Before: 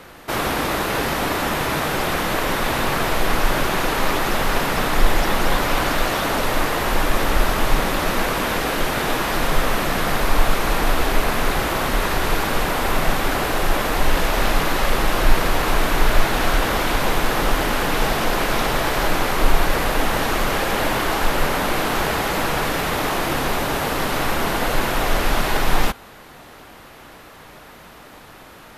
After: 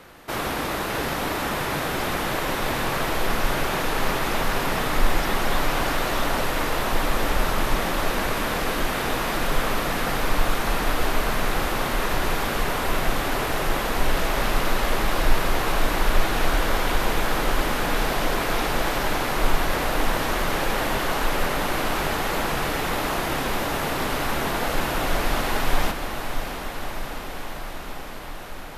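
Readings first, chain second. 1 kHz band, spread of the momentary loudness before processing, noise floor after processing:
−4.0 dB, 2 LU, −32 dBFS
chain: feedback delay with all-pass diffusion 651 ms, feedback 76%, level −8.5 dB
level −5 dB

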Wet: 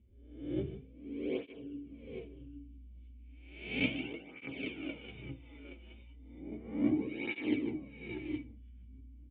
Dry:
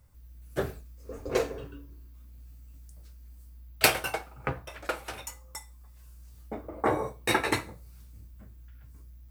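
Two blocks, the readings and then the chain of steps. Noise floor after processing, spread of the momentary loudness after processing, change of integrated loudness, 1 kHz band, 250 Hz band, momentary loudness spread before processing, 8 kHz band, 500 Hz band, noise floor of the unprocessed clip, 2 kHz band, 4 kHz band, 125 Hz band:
−54 dBFS, 21 LU, −8.0 dB, −23.0 dB, +3.5 dB, 21 LU, below −40 dB, −9.0 dB, −51 dBFS, −9.0 dB, −11.5 dB, −5.5 dB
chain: peak hold with a rise ahead of every peak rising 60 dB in 0.69 s
formant resonators in series i
dynamic equaliser 1,500 Hz, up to −3 dB, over −55 dBFS, Q 1.4
multi-tap delay 150/781/820 ms −12/−20/−9 dB
through-zero flanger with one copy inverted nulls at 0.34 Hz, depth 7.1 ms
level +7 dB

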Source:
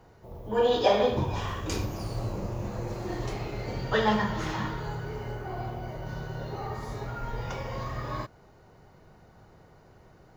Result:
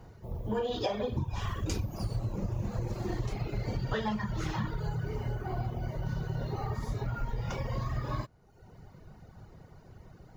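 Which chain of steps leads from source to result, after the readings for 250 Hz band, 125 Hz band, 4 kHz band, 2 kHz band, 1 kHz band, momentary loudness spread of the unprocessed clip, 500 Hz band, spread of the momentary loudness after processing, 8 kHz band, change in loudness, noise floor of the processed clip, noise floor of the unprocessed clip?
−3.0 dB, +1.0 dB, −7.0 dB, −7.5 dB, −7.5 dB, 12 LU, −8.5 dB, 21 LU, −3.5 dB, −4.0 dB, −56 dBFS, −56 dBFS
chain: reverb reduction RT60 0.85 s
bass and treble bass +8 dB, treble +2 dB
downward compressor 12 to 1, threshold −28 dBFS, peak gain reduction 11.5 dB

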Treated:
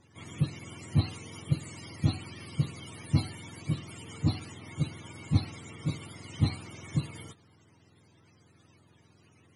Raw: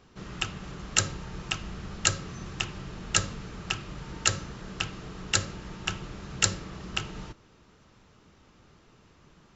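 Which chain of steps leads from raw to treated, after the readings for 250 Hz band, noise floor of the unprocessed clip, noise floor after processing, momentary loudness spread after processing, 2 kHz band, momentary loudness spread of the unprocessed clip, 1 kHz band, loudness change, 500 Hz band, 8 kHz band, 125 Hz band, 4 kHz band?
+5.5 dB, −59 dBFS, −62 dBFS, 14 LU, −12.5 dB, 14 LU, −9.0 dB, −2.5 dB, −5.0 dB, can't be measured, +7.0 dB, −11.5 dB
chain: frequency axis turned over on the octave scale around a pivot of 640 Hz
level −1.5 dB
MP3 96 kbit/s 24,000 Hz

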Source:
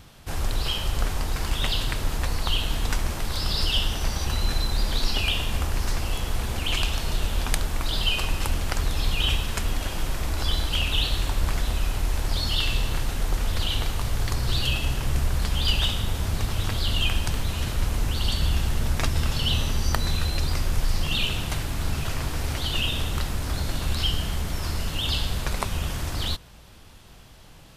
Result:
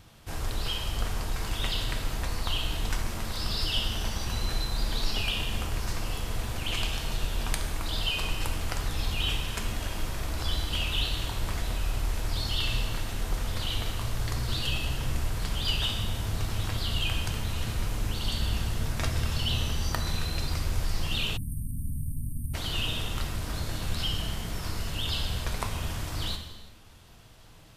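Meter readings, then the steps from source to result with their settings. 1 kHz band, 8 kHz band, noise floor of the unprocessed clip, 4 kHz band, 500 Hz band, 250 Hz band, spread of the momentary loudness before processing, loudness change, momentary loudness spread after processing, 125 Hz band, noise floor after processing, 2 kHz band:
−4.5 dB, −4.5 dB, −47 dBFS, −4.5 dB, −4.5 dB, −4.0 dB, 5 LU, −4.5 dB, 5 LU, −4.5 dB, −46 dBFS, −4.0 dB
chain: reverb whose tail is shaped and stops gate 410 ms falling, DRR 4 dB
time-frequency box erased 0:21.37–0:22.54, 300–8,400 Hz
level −5.5 dB

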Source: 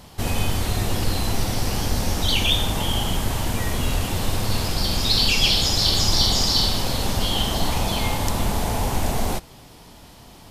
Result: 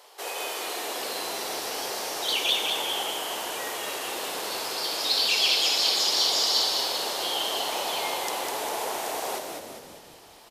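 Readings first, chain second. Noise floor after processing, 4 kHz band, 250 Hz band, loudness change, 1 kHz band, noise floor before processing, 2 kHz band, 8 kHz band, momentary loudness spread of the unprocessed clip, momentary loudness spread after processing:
−50 dBFS, −2.5 dB, −15.5 dB, −4.0 dB, −2.5 dB, −46 dBFS, −2.0 dB, −3.0 dB, 8 LU, 11 LU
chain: elliptic high-pass filter 410 Hz, stop band 70 dB
on a send: echo with shifted repeats 201 ms, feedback 52%, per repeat −69 Hz, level −4.5 dB
on the sum: level −3.5 dB

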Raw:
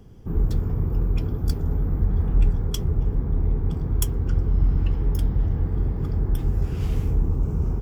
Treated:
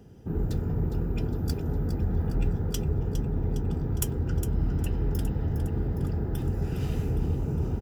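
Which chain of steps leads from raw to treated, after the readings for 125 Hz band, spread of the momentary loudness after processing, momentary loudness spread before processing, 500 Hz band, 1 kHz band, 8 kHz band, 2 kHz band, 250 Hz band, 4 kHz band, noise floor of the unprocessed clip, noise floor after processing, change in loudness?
−4.0 dB, 2 LU, 3 LU, +0.5 dB, −1.0 dB, −0.5 dB, 0.0 dB, −0.5 dB, −4.0 dB, −29 dBFS, −33 dBFS, −4.5 dB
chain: notch comb filter 1,100 Hz
on a send: repeating echo 409 ms, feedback 58%, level −10 dB

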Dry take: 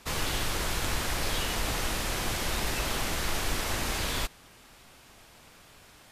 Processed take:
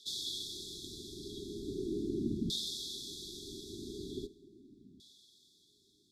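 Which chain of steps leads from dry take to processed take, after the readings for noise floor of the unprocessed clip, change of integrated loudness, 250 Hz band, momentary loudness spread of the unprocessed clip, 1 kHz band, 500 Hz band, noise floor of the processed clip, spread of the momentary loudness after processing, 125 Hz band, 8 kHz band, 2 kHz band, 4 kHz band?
−55 dBFS, −9.5 dB, −1.0 dB, 1 LU, below −40 dB, −6.0 dB, −69 dBFS, 23 LU, −11.5 dB, −13.0 dB, below −40 dB, −7.0 dB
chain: auto-filter band-pass saw down 0.4 Hz 210–3,000 Hz
four-comb reverb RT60 0.94 s, combs from 31 ms, DRR 17 dB
brick-wall band-stop 430–3,300 Hz
level +9 dB

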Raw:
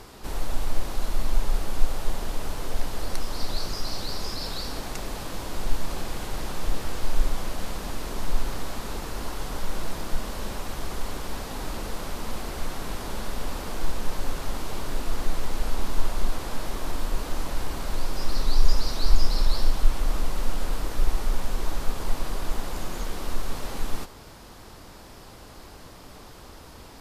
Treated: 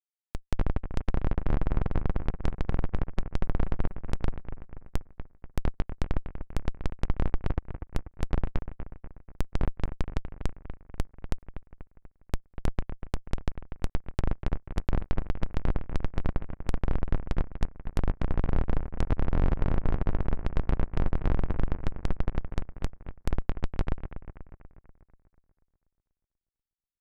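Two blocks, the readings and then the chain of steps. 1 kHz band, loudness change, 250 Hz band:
−5.5 dB, −1.5 dB, +1.5 dB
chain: comparator with hysteresis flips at −19 dBFS
treble cut that deepens with the level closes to 1,700 Hz, closed at −21.5 dBFS
bucket-brigade delay 243 ms, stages 4,096, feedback 53%, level −10 dB

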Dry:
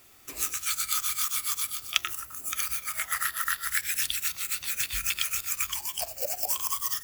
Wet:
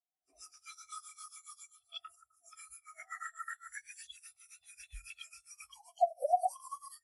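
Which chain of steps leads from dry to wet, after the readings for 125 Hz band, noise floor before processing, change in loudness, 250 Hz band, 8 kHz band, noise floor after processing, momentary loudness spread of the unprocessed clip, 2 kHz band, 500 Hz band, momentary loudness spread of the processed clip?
below −10 dB, −47 dBFS, −11.5 dB, can't be measured, −21.0 dB, −82 dBFS, 4 LU, −17.0 dB, +5.5 dB, 21 LU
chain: hearing-aid frequency compression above 3,300 Hz 1.5 to 1
parametric band 710 Hz +14 dB 0.49 octaves
soft clipping −22.5 dBFS, distortion −13 dB
backwards echo 144 ms −17 dB
every bin expanded away from the loudest bin 2.5 to 1
level +4.5 dB

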